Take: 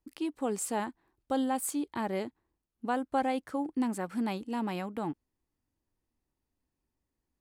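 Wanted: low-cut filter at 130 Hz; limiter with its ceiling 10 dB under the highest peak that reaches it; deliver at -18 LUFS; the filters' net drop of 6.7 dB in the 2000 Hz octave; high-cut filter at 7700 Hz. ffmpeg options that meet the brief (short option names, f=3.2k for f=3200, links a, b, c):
-af "highpass=130,lowpass=7.7k,equalizer=f=2k:t=o:g=-9,volume=20dB,alimiter=limit=-8dB:level=0:latency=1"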